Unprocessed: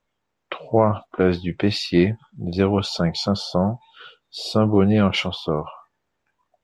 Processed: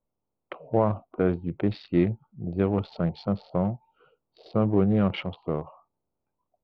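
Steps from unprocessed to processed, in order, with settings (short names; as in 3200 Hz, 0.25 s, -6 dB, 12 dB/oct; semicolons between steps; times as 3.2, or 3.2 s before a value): Wiener smoothing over 25 samples; air absorption 370 m; gain -4.5 dB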